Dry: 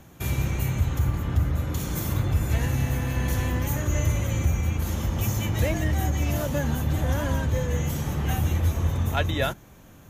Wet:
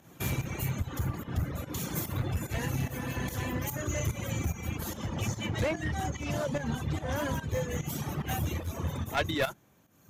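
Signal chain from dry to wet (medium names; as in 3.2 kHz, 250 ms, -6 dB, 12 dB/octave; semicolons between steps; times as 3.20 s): high-pass 110 Hz 12 dB/octave; reverb removal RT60 1.6 s; 4.97–7.16 s: low-pass 7 kHz 12 dB/octave; one-sided clip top -27.5 dBFS; volume shaper 146 bpm, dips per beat 1, -12 dB, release 158 ms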